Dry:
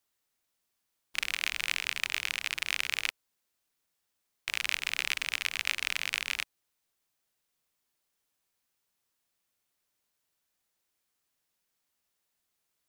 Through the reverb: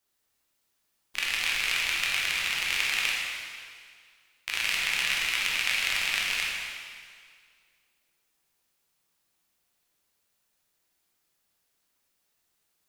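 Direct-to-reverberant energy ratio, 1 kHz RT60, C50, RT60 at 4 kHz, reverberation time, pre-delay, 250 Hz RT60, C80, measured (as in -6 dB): -4.0 dB, 2.0 s, -1.0 dB, 1.9 s, 2.0 s, 6 ms, 1.9 s, 1.0 dB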